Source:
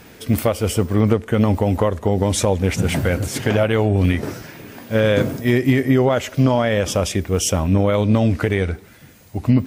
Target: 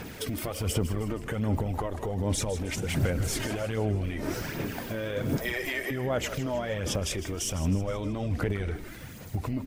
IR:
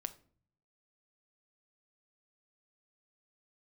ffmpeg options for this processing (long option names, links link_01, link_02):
-filter_complex "[0:a]asplit=3[link_01][link_02][link_03];[link_01]afade=type=out:start_time=5.37:duration=0.02[link_04];[link_02]highpass=frequency=520:width=0.5412,highpass=frequency=520:width=1.3066,afade=type=in:start_time=5.37:duration=0.02,afade=type=out:start_time=5.9:duration=0.02[link_05];[link_03]afade=type=in:start_time=5.9:duration=0.02[link_06];[link_04][link_05][link_06]amix=inputs=3:normalize=0,acompressor=threshold=-22dB:ratio=6,alimiter=limit=-22.5dB:level=0:latency=1:release=61,aphaser=in_gain=1:out_gain=1:delay=3.3:decay=0.48:speed=1.3:type=sinusoidal,asplit=6[link_07][link_08][link_09][link_10][link_11][link_12];[link_08]adelay=157,afreqshift=-72,volume=-12.5dB[link_13];[link_09]adelay=314,afreqshift=-144,volume=-18.2dB[link_14];[link_10]adelay=471,afreqshift=-216,volume=-23.9dB[link_15];[link_11]adelay=628,afreqshift=-288,volume=-29.5dB[link_16];[link_12]adelay=785,afreqshift=-360,volume=-35.2dB[link_17];[link_07][link_13][link_14][link_15][link_16][link_17]amix=inputs=6:normalize=0"